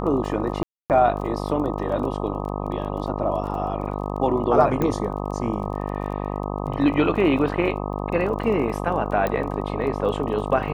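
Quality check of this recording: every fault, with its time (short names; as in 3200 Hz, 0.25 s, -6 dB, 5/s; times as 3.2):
buzz 50 Hz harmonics 25 -28 dBFS
crackle 22/s -33 dBFS
0.63–0.9 gap 0.268 s
4.82 pop -12 dBFS
9.27 pop -12 dBFS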